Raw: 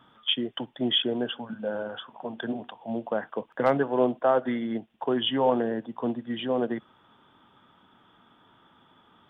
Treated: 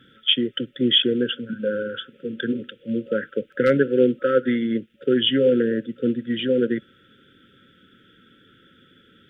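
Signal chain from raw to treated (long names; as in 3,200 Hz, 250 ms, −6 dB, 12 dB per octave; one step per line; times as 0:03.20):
brick-wall band-stop 570–1,300 Hz
level +7 dB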